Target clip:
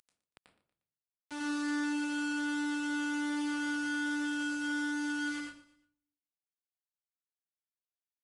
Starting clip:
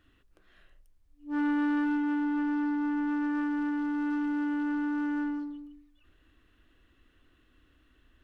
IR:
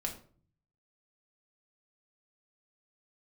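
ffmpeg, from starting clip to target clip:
-filter_complex "[0:a]aeval=exprs='val(0)+0.00141*(sin(2*PI*50*n/s)+sin(2*PI*2*50*n/s)/2+sin(2*PI*3*50*n/s)/3+sin(2*PI*4*50*n/s)/4+sin(2*PI*5*50*n/s)/5)':c=same,lowshelf=f=340:g=-8.5,acompressor=mode=upward:threshold=0.0126:ratio=2.5,acrusher=bits=5:mix=0:aa=0.000001,highpass=f=100:p=1,aecho=1:1:118|236|354:0.141|0.0579|0.0237,asplit=2[s0][s1];[1:a]atrim=start_sample=2205,adelay=88[s2];[s1][s2]afir=irnorm=-1:irlink=0,volume=0.794[s3];[s0][s3]amix=inputs=2:normalize=0,aresample=22050,aresample=44100,volume=0.447"

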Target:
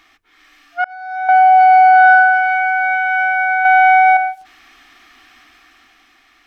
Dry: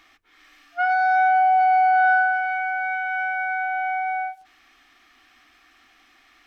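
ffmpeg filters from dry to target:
-filter_complex "[0:a]asettb=1/sr,asplit=3[s0][s1][s2];[s0]atrim=end=3.654[s3];[s1]atrim=start=3.65:end=4.17,asetpts=PTS-STARTPTS,afade=t=in:d=0.004:c=qsin,afade=t=out:st=0.516:d=0.004:c=qsin,acontrast=60[s4];[s2]atrim=start=4.166[s5];[s3][s4]acrossfade=d=0.004:c1=hsin:c2=qsin[s6];[s6][s5]acrossfade=d=0.004:c1=qsin:c2=hsin,bandreject=f=550:w=12,dynaudnorm=f=200:g=11:m=2.11,asettb=1/sr,asplit=3[s7][s8][s9];[s7]atrim=end=0.844[s10];[s8]atrim=start=0.84:end=1.29,asetpts=PTS-STARTPTS,afade=t=in:d=0.004:c=qsin,afade=t=out:st=0.446:d=0.004:c=qsin,agate=range=0.0224:threshold=0.562:ratio=3:detection=peak[s11];[s9]atrim=start=1.286[s12];[s10][s11]acrossfade=d=0.004:c1=hsin:c2=qsin[s13];[s13][s12]acrossfade=d=0.004:c1=qsin:c2=hsin,asettb=1/sr,asplit=3[s14][s15][s16];[s14]atrim=end=2.144[s17];[s15]atrim=start=2.14:end=2.91,asetpts=PTS-STARTPTS,afade=t=in:d=0.004:c=qsin,afade=t=out:st=0.766:d=0.004:c=qsin,highpass=f=120:p=1[s18];[s16]atrim=start=2.906[s19];[s17][s18]acrossfade=d=0.004:c1=hsin:c2=qsin[s20];[s20][s19]acrossfade=d=0.004:c1=qsin:c2=hsin,volume=1.5"

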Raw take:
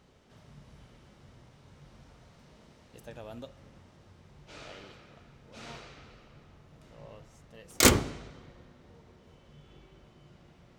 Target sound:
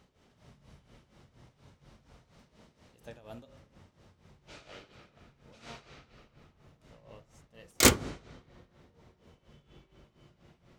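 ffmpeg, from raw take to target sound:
-af "bandreject=f=49.31:t=h:w=4,bandreject=f=98.62:t=h:w=4,bandreject=f=147.93:t=h:w=4,bandreject=f=197.24:t=h:w=4,bandreject=f=246.55:t=h:w=4,bandreject=f=295.86:t=h:w=4,bandreject=f=345.17:t=h:w=4,bandreject=f=394.48:t=h:w=4,bandreject=f=443.79:t=h:w=4,bandreject=f=493.1:t=h:w=4,bandreject=f=542.41:t=h:w=4,bandreject=f=591.72:t=h:w=4,bandreject=f=641.03:t=h:w=4,bandreject=f=690.34:t=h:w=4,bandreject=f=739.65:t=h:w=4,bandreject=f=788.96:t=h:w=4,bandreject=f=838.27:t=h:w=4,bandreject=f=887.58:t=h:w=4,bandreject=f=936.89:t=h:w=4,bandreject=f=986.2:t=h:w=4,bandreject=f=1035.51:t=h:w=4,bandreject=f=1084.82:t=h:w=4,bandreject=f=1134.13:t=h:w=4,bandreject=f=1183.44:t=h:w=4,bandreject=f=1232.75:t=h:w=4,bandreject=f=1282.06:t=h:w=4,bandreject=f=1331.37:t=h:w=4,bandreject=f=1380.68:t=h:w=4,bandreject=f=1429.99:t=h:w=4,bandreject=f=1479.3:t=h:w=4,bandreject=f=1528.61:t=h:w=4,bandreject=f=1577.92:t=h:w=4,bandreject=f=1627.23:t=h:w=4,bandreject=f=1676.54:t=h:w=4,bandreject=f=1725.85:t=h:w=4,bandreject=f=1775.16:t=h:w=4,bandreject=f=1824.47:t=h:w=4,bandreject=f=1873.78:t=h:w=4,tremolo=f=4.2:d=0.78"

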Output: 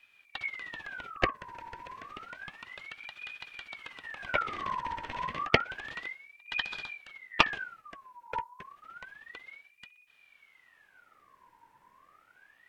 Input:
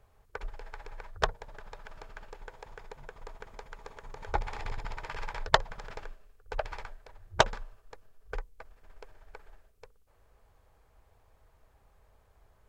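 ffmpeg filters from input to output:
-filter_complex "[0:a]acrossover=split=3400[s0][s1];[s1]acompressor=threshold=0.00112:ratio=4:attack=1:release=60[s2];[s0][s2]amix=inputs=2:normalize=0,aeval=exprs='val(0)*sin(2*PI*1700*n/s+1700*0.45/0.3*sin(2*PI*0.3*n/s))':c=same,volume=1.41"

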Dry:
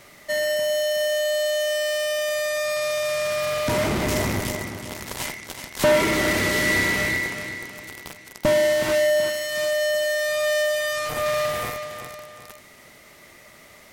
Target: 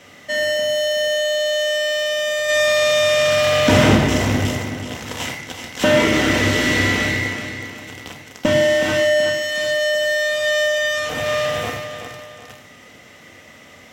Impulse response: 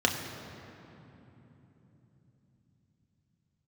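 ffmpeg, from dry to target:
-filter_complex "[0:a]asplit=3[s0][s1][s2];[s0]afade=t=out:st=2.48:d=0.02[s3];[s1]acontrast=42,afade=t=in:st=2.48:d=0.02,afade=t=out:st=3.95:d=0.02[s4];[s2]afade=t=in:st=3.95:d=0.02[s5];[s3][s4][s5]amix=inputs=3:normalize=0[s6];[1:a]atrim=start_sample=2205,afade=t=out:st=0.2:d=0.01,atrim=end_sample=9261[s7];[s6][s7]afir=irnorm=-1:irlink=0,volume=0.473"

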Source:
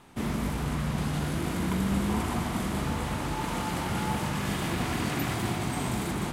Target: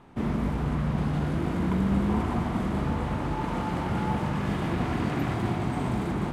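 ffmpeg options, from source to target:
-af "lowpass=f=1200:p=1,volume=1.41"

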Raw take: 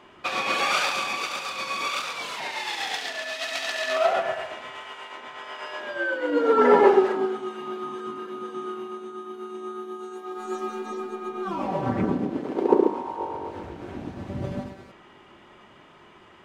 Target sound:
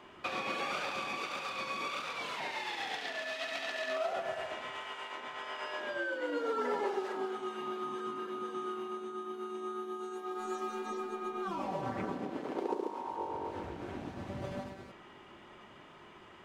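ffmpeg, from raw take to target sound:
-filter_complex "[0:a]acrossover=split=510|3700[s0][s1][s2];[s0]acompressor=threshold=0.0126:ratio=4[s3];[s1]acompressor=threshold=0.02:ratio=4[s4];[s2]acompressor=threshold=0.00282:ratio=4[s5];[s3][s4][s5]amix=inputs=3:normalize=0,volume=0.708"

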